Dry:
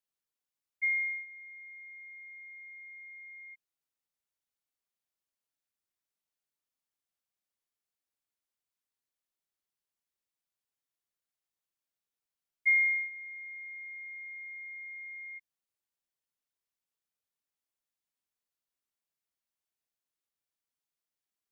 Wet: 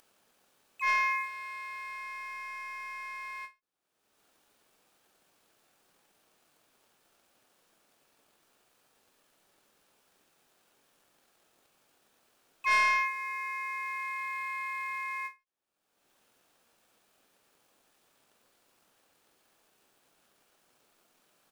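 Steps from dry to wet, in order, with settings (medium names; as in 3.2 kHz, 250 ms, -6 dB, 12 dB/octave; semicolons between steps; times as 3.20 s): tone controls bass -13 dB, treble -12 dB; in parallel at -2.5 dB: compression, threshold -41 dBFS, peak gain reduction 16 dB; on the sum: Butterworth band-stop 2 kHz, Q 4.9; early reflections 30 ms -7.5 dB, 53 ms -5 dB; harmony voices -12 st -1 dB, -4 st -8 dB, +3 st -9 dB; upward compressor, threshold -43 dBFS; peaking EQ 2 kHz -3.5 dB 3 oct; waveshaping leveller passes 2; endings held to a fixed fall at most 280 dB/s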